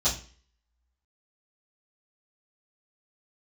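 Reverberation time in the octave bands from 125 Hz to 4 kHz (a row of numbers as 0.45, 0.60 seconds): 0.45, 0.45, 0.40, 0.40, 0.45, 0.40 seconds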